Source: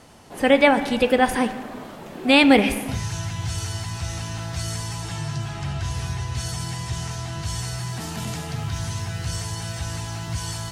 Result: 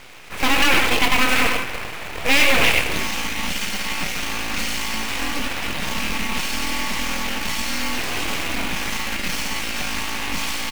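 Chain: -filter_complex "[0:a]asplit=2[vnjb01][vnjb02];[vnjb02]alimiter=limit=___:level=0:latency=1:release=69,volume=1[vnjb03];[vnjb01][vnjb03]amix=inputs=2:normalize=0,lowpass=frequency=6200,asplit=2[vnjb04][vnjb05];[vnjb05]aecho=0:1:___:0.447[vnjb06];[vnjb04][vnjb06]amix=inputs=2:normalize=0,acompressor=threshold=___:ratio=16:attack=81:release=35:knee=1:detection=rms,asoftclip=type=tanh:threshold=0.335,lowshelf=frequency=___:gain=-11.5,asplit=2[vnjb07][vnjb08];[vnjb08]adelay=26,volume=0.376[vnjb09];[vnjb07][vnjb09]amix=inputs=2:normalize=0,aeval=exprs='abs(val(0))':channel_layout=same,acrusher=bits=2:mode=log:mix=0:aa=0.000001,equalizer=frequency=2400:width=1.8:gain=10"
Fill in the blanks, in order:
0.299, 97, 0.178, 84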